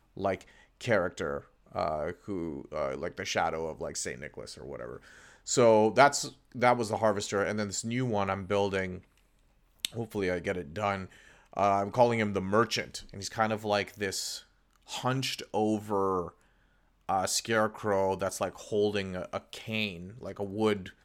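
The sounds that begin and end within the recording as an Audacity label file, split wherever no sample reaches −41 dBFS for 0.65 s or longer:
9.800000	16.290000	sound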